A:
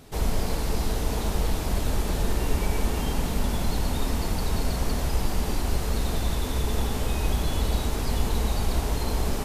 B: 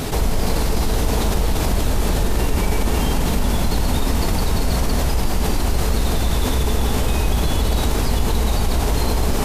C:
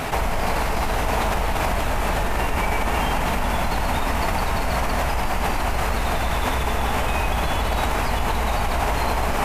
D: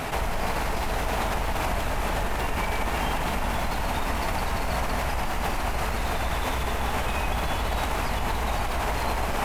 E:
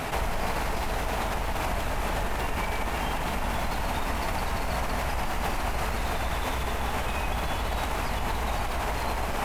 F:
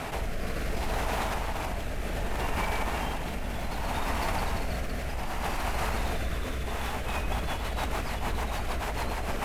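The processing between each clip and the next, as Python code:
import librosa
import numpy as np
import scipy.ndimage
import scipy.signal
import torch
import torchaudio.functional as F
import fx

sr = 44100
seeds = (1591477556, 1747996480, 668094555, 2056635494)

y1 = fx.env_flatten(x, sr, amount_pct=70)
y1 = y1 * 10.0 ** (3.0 / 20.0)
y2 = fx.band_shelf(y1, sr, hz=1300.0, db=11.0, octaves=2.5)
y2 = y2 * 10.0 ** (-6.0 / 20.0)
y3 = np.minimum(y2, 2.0 * 10.0 ** (-17.5 / 20.0) - y2)
y3 = y3 * 10.0 ** (-4.0 / 20.0)
y4 = fx.rider(y3, sr, range_db=10, speed_s=0.5)
y4 = y4 * 10.0 ** (-2.0 / 20.0)
y5 = fx.rotary_switch(y4, sr, hz=0.65, then_hz=6.7, switch_at_s=6.54)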